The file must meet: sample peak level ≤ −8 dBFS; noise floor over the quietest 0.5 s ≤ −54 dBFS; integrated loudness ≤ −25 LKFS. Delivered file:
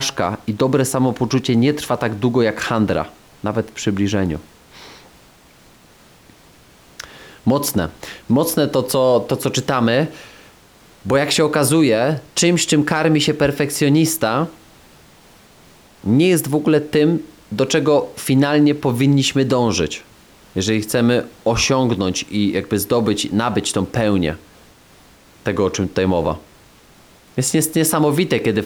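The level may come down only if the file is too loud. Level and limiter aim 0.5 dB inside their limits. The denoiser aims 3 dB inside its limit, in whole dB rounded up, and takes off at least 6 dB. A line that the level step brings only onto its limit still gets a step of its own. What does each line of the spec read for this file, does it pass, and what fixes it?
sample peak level −5.5 dBFS: out of spec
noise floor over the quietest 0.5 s −48 dBFS: out of spec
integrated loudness −17.5 LKFS: out of spec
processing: level −8 dB

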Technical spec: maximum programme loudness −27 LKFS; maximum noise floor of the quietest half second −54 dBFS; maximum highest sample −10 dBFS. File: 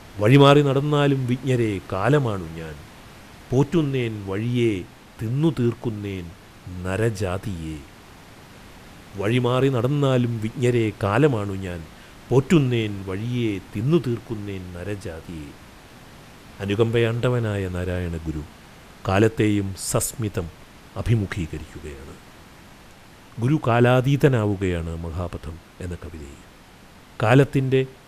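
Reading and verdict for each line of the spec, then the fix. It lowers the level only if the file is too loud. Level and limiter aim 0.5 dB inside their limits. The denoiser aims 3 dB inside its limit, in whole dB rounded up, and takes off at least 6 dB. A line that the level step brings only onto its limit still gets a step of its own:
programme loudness −22.0 LKFS: out of spec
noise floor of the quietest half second −47 dBFS: out of spec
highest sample −4.0 dBFS: out of spec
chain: broadband denoise 6 dB, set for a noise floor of −47 dBFS
level −5.5 dB
brickwall limiter −10.5 dBFS

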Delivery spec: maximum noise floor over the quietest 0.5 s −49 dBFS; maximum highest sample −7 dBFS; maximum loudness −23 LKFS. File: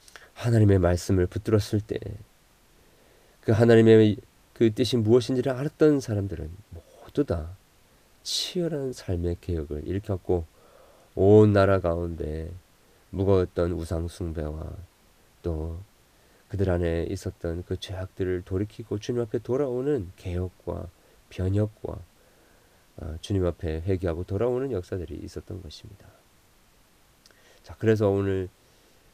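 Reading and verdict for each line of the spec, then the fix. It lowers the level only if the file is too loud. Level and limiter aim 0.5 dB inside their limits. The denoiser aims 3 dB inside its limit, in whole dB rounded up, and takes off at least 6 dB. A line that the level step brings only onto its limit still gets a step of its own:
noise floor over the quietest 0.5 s −59 dBFS: in spec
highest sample −5.5 dBFS: out of spec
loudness −25.5 LKFS: in spec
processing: brickwall limiter −7.5 dBFS

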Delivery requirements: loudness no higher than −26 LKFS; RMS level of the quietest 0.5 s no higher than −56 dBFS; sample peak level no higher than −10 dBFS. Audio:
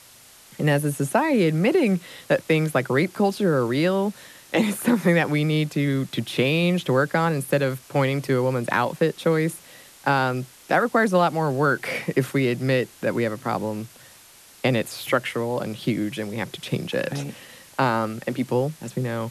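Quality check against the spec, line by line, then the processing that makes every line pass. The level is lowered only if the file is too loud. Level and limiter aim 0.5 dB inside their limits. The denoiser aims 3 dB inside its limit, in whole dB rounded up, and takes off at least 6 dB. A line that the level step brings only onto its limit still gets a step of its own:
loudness −23.0 LKFS: out of spec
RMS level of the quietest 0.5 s −50 dBFS: out of spec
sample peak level −7.0 dBFS: out of spec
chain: broadband denoise 6 dB, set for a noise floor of −50 dBFS
level −3.5 dB

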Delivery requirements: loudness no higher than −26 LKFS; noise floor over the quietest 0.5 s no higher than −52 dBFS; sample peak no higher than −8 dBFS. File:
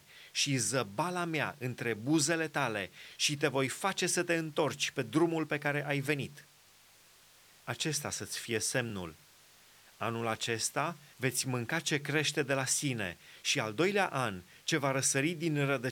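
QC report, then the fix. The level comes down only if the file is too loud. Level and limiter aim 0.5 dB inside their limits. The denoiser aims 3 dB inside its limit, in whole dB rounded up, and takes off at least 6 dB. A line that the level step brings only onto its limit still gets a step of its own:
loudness −32.5 LKFS: in spec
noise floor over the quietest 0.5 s −62 dBFS: in spec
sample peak −15.0 dBFS: in spec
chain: no processing needed

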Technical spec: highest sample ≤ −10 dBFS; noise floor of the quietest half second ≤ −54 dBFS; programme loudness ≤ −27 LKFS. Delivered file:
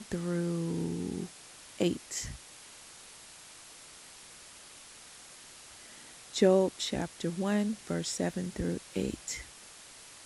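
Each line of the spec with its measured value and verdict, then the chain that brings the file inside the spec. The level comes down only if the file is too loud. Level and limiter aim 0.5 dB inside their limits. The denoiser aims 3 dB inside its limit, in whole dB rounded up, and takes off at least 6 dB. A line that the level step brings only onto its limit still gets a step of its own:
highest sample −12.0 dBFS: in spec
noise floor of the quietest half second −52 dBFS: out of spec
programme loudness −32.5 LKFS: in spec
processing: broadband denoise 6 dB, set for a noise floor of −52 dBFS

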